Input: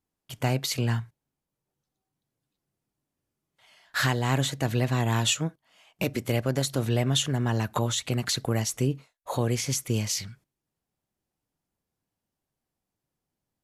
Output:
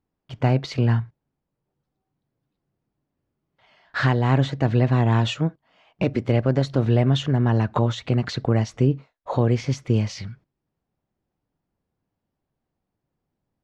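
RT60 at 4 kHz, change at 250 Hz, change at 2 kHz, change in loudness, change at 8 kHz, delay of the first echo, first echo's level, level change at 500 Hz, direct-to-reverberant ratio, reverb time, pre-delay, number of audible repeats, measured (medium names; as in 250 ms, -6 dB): no reverb, +6.5 dB, +1.0 dB, +5.0 dB, under -10 dB, no echo, no echo, +6.0 dB, no reverb, no reverb, no reverb, no echo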